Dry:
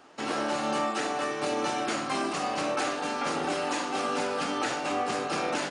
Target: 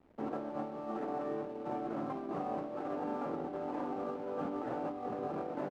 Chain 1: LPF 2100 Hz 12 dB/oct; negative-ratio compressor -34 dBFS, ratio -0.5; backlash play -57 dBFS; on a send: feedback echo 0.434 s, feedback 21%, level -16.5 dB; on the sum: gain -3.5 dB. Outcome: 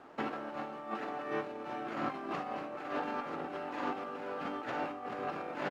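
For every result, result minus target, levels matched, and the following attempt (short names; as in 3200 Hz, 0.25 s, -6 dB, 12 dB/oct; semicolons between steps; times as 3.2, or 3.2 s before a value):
2000 Hz band +10.5 dB; backlash: distortion -8 dB
LPF 720 Hz 12 dB/oct; negative-ratio compressor -34 dBFS, ratio -0.5; backlash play -57 dBFS; on a send: feedback echo 0.434 s, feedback 21%, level -16.5 dB; on the sum: gain -3.5 dB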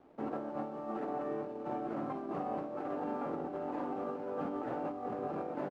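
backlash: distortion -8 dB
LPF 720 Hz 12 dB/oct; negative-ratio compressor -34 dBFS, ratio -0.5; backlash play -48.5 dBFS; on a send: feedback echo 0.434 s, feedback 21%, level -16.5 dB; on the sum: gain -3.5 dB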